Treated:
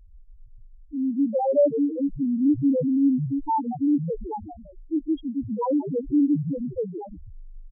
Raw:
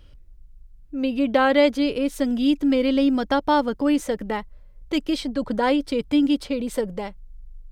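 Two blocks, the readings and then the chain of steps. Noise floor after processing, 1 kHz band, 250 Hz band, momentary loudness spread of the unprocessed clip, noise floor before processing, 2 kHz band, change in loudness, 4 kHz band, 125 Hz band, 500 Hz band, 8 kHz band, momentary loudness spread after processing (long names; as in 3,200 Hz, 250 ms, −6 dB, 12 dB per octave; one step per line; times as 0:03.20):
−48 dBFS, −4.5 dB, −1.5 dB, 9 LU, −48 dBFS, below −40 dB, −2.0 dB, below −30 dB, can't be measured, −3.0 dB, below −35 dB, 12 LU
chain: echo with shifted repeats 164 ms, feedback 52%, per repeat −130 Hz, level −8 dB
spectral peaks only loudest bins 1
level +4 dB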